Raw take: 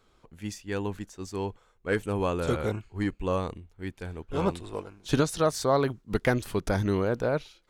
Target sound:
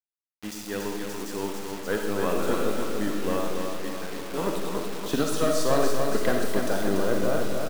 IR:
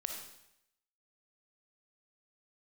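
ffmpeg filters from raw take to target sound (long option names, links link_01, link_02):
-filter_complex "[0:a]highpass=frequency=190:width=0.5412,highpass=frequency=190:width=1.3066,aeval=exprs='(tanh(8.91*val(0)+0.55)-tanh(0.55))/8.91':channel_layout=same,bandreject=frequency=2200:width=7.9,aecho=1:1:287|574|861|1148|1435|1722|2009:0.562|0.315|0.176|0.0988|0.0553|0.031|0.0173[link_01];[1:a]atrim=start_sample=2205[link_02];[link_01][link_02]afir=irnorm=-1:irlink=0,acrusher=bits=6:mix=0:aa=0.000001,volume=4dB"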